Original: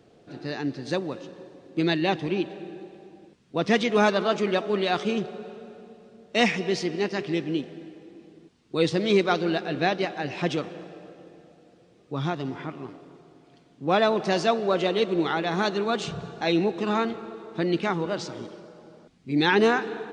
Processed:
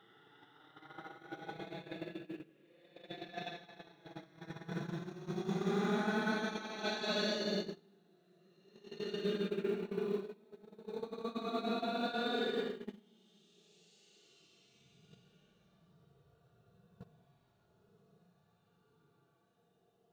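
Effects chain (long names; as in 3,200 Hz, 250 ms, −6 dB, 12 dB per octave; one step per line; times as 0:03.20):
dynamic equaliser 1,000 Hz, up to −8 dB, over −39 dBFS, Q 1.1
extreme stretch with random phases 19×, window 0.05 s, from 0:15.29
noise gate −26 dBFS, range −25 dB
log-companded quantiser 8 bits
level −8.5 dB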